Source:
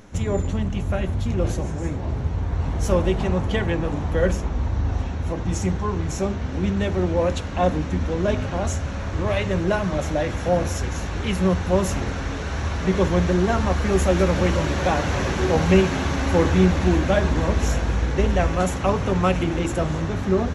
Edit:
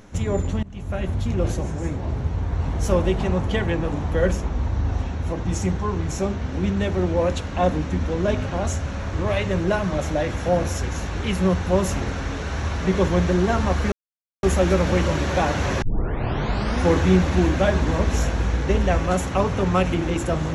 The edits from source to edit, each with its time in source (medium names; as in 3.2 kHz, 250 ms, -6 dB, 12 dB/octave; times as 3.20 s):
0.63–1.10 s: fade in, from -21.5 dB
13.92 s: insert silence 0.51 s
15.31 s: tape start 1.07 s